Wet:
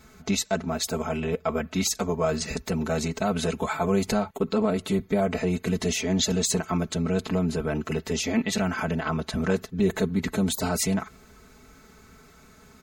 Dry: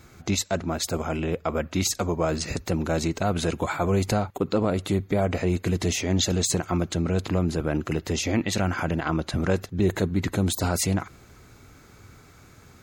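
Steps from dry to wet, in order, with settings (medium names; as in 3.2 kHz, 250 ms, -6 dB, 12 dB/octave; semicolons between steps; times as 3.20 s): comb 4.6 ms, depth 89%; trim -3 dB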